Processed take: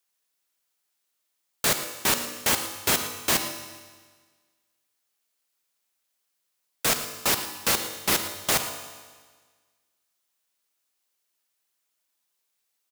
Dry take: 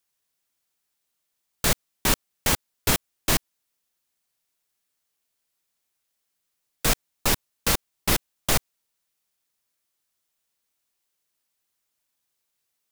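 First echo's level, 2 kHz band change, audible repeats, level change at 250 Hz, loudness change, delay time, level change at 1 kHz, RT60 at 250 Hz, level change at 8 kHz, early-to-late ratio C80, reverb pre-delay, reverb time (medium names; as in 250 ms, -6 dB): -14.5 dB, +0.5 dB, 1, -3.5 dB, +0.5 dB, 113 ms, +0.5 dB, 1.5 s, +1.0 dB, 9.0 dB, 4 ms, 1.5 s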